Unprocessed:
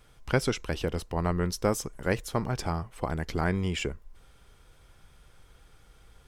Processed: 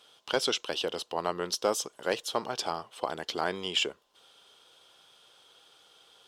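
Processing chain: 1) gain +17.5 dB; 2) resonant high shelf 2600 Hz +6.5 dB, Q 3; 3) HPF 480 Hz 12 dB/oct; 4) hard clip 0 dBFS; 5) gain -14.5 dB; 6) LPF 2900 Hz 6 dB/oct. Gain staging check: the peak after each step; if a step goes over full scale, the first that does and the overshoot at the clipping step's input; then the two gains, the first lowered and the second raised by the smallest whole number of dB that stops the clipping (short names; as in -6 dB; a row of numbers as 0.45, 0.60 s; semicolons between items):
+6.0, +6.0, +6.5, 0.0, -14.5, -14.5 dBFS; step 1, 6.5 dB; step 1 +10.5 dB, step 5 -7.5 dB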